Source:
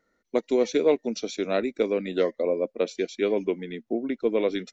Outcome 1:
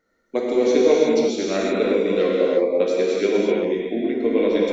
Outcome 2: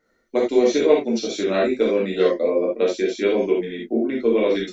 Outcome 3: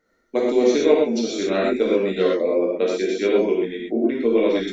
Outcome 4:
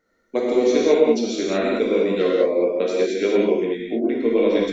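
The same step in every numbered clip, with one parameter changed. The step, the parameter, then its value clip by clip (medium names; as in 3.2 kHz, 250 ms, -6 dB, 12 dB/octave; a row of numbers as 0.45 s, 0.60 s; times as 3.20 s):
gated-style reverb, gate: 390 ms, 100 ms, 150 ms, 240 ms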